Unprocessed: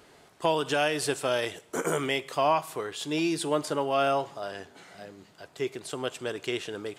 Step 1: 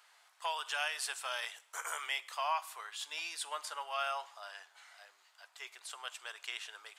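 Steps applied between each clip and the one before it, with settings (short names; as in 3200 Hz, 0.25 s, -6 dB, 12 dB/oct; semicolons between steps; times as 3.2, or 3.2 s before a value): HPF 900 Hz 24 dB/oct; gain -5.5 dB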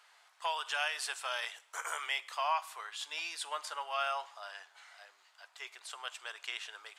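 high shelf 10000 Hz -9 dB; gain +2 dB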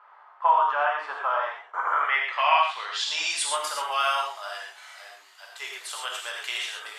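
low-pass sweep 1100 Hz -> 13000 Hz, 1.84–3.67; non-linear reverb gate 0.15 s flat, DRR -2 dB; gain +6.5 dB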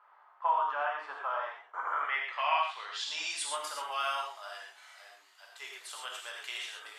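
bell 280 Hz +5 dB 0.49 oct; gain -8.5 dB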